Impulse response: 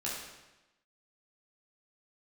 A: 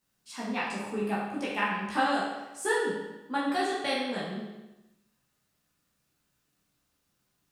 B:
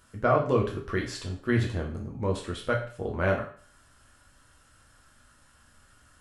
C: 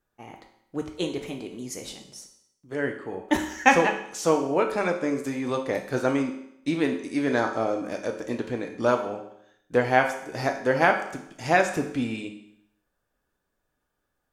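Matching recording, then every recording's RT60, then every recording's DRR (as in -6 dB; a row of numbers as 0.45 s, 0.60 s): A; 1.0 s, 0.45 s, 0.75 s; -7.0 dB, -1.5 dB, 3.5 dB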